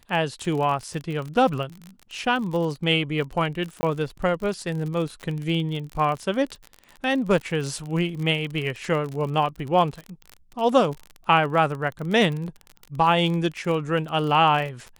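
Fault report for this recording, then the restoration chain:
surface crackle 40 per second −29 dBFS
0:03.81–0:03.83: drop-out 20 ms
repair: click removal
repair the gap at 0:03.81, 20 ms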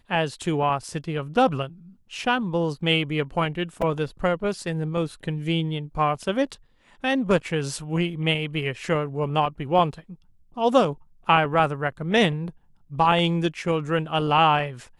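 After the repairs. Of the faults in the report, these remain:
none of them is left

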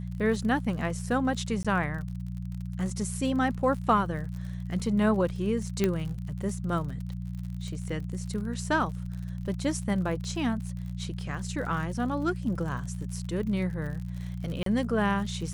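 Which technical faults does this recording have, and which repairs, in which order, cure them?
surface crackle 57 per second −37 dBFS
mains hum 60 Hz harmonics 3 −35 dBFS
0:01.63–0:01.65: drop-out 16 ms
0:05.84: click −12 dBFS
0:14.63–0:14.66: drop-out 33 ms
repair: click removal
hum removal 60 Hz, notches 3
repair the gap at 0:01.63, 16 ms
repair the gap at 0:14.63, 33 ms

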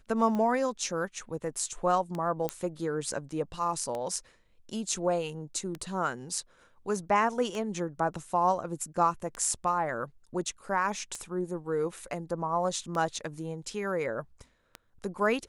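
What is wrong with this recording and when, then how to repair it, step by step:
scratch tick 33 1/3 rpm −22 dBFS
0:02.49: click −15 dBFS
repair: click removal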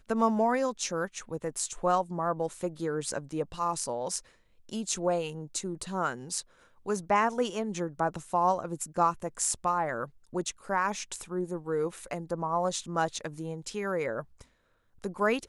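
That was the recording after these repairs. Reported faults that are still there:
0:02.49: click

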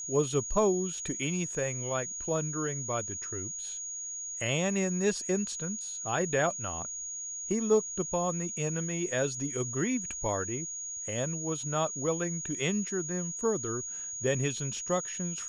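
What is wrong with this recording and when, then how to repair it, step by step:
whistle 6,700 Hz −36 dBFS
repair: notch filter 6,700 Hz, Q 30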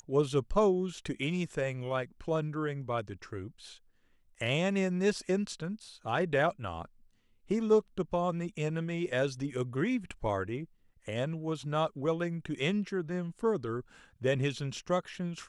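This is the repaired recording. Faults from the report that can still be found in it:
none of them is left

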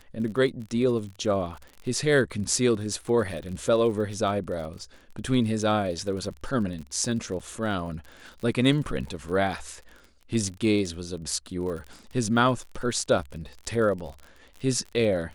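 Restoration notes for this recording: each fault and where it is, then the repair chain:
surface crackle 44 per second −35 dBFS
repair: click removal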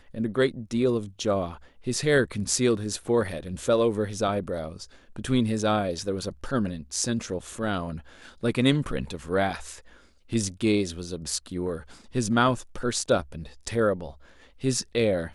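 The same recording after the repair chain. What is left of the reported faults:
none of them is left

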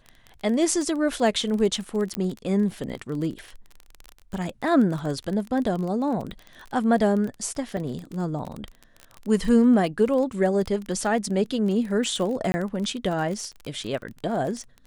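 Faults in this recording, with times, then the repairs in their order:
surface crackle 26 per second −29 dBFS
0:02.15: click −12 dBFS
0:07.77: drop-out 2.6 ms
0:12.52–0:12.54: drop-out 20 ms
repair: click removal
repair the gap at 0:07.77, 2.6 ms
repair the gap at 0:12.52, 20 ms

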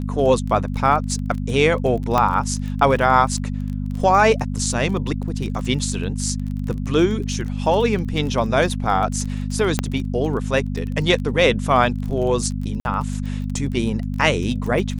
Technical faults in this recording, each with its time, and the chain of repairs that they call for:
surface crackle 23 per second −27 dBFS
mains hum 50 Hz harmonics 5 −25 dBFS
0:02.18: click −6 dBFS
0:09.79: click −4 dBFS
0:12.80–0:12.85: drop-out 51 ms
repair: click removal
hum removal 50 Hz, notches 5
repair the gap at 0:12.80, 51 ms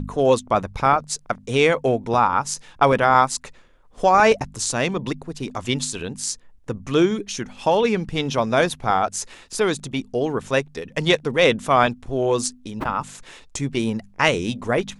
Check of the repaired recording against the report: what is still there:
0:02.18: click

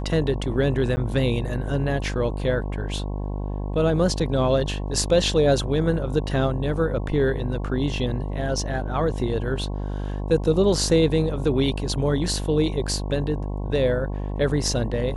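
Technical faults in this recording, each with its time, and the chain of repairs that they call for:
mains buzz 50 Hz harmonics 22 −28 dBFS
0:00.96–0:00.97: drop-out 10 ms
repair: hum removal 50 Hz, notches 22
repair the gap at 0:00.96, 10 ms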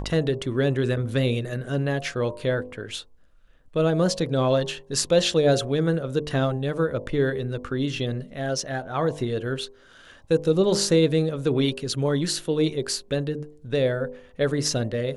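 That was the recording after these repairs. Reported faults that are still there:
none of them is left

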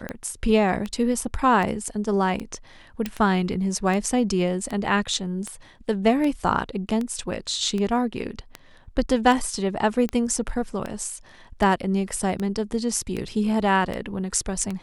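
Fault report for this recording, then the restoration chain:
scratch tick 78 rpm −16 dBFS
0:03.06: click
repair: click removal

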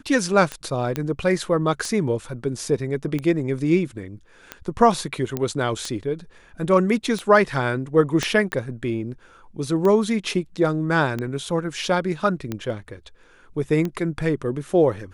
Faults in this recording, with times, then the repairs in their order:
scratch tick 45 rpm −14 dBFS
0:00.96: click −11 dBFS
0:05.37: click −11 dBFS
0:08.23: click −9 dBFS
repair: click removal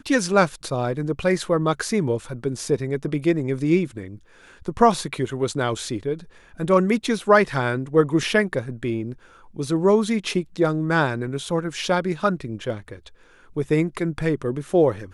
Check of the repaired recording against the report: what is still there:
0:08.23: click

